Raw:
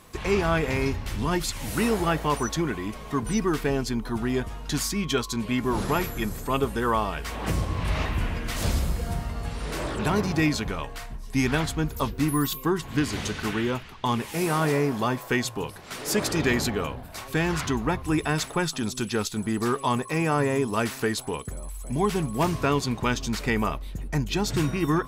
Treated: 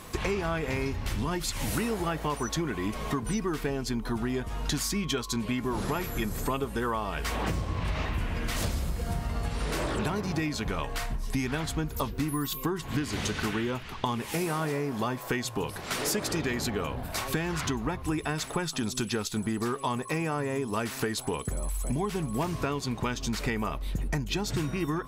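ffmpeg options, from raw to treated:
-filter_complex "[0:a]asettb=1/sr,asplit=3[s0][s1][s2];[s0]atrim=end=7.434[s3];[s1]atrim=start=7.43:end=8.14,asetpts=PTS-STARTPTS,afade=t=in:d=0.004:c=qsin,afade=t=out:st=0.706:d=0.004:c=qsin,equalizer=f=11000:t=o:w=0.66:g=-6.5[s4];[s2]atrim=start=8.136[s5];[s3][s4]acrossfade=d=0.004:c1=hsin:c2=qsin[s6];[s6][s5]acrossfade=d=0.004:c1=qsin:c2=hsin,acompressor=threshold=0.0224:ratio=10,volume=2.11"

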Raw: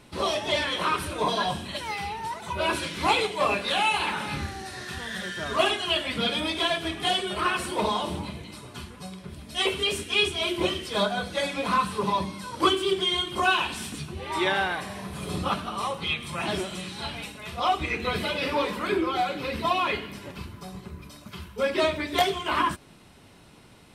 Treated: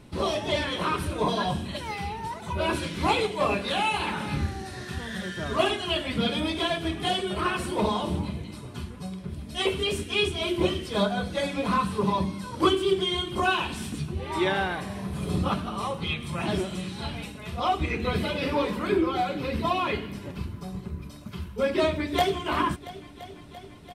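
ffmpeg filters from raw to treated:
-filter_complex "[0:a]asplit=2[s0][s1];[s1]afade=t=in:st=21.93:d=0.01,afade=t=out:st=22.44:d=0.01,aecho=0:1:340|680|1020|1360|1700|2040|2380|2720|3060|3400|3740|4080:0.16788|0.134304|0.107443|0.0859548|0.0687638|0.0550111|0.0440088|0.0352071|0.0281657|0.0225325|0.018026|0.0144208[s2];[s0][s2]amix=inputs=2:normalize=0,lowshelf=f=430:g=10,volume=0.668"

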